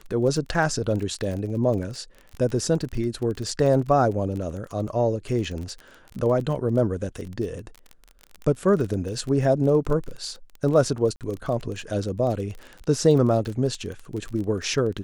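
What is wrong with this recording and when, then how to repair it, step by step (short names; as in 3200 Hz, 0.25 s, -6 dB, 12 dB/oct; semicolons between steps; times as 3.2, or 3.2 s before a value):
crackle 26/s -30 dBFS
11.16–11.21 gap 48 ms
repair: de-click; interpolate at 11.16, 48 ms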